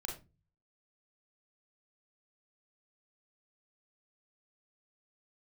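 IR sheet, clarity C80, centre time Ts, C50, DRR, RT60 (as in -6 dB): 14.5 dB, 25 ms, 7.0 dB, 0.5 dB, 0.30 s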